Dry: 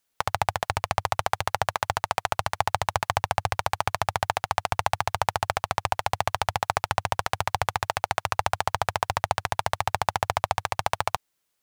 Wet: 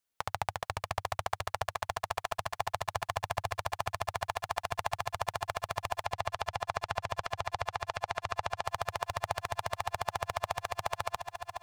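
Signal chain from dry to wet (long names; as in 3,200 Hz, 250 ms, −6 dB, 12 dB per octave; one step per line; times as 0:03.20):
0:06.03–0:08.67: low-pass filter 6,100 Hz 12 dB per octave
feedback echo with a long and a short gap by turns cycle 703 ms, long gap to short 1.5 to 1, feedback 74%, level −12 dB
level −9 dB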